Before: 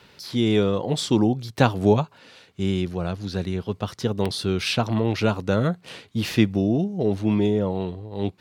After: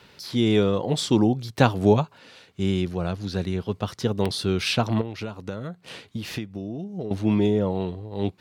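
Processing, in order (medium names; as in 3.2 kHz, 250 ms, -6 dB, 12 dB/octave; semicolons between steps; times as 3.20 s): 5.01–7.11 s: compression 16:1, threshold -28 dBFS, peak gain reduction 17 dB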